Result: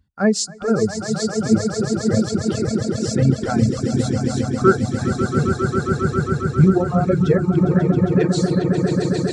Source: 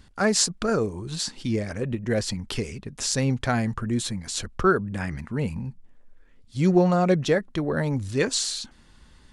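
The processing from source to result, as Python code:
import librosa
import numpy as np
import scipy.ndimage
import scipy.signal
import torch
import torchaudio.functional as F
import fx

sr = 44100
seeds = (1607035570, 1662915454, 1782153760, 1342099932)

p1 = scipy.signal.sosfilt(scipy.signal.butter(2, 62.0, 'highpass', fs=sr, output='sos'), x)
p2 = fx.low_shelf(p1, sr, hz=140.0, db=6.0)
p3 = fx.hum_notches(p2, sr, base_hz=60, count=9)
p4 = fx.echo_swell(p3, sr, ms=135, loudest=8, wet_db=-5.0)
p5 = fx.dereverb_blind(p4, sr, rt60_s=1.7)
p6 = fx.rider(p5, sr, range_db=10, speed_s=0.5)
p7 = p5 + (p6 * 10.0 ** (1.0 / 20.0))
p8 = fx.spectral_expand(p7, sr, expansion=1.5)
y = p8 * 10.0 ** (-4.0 / 20.0)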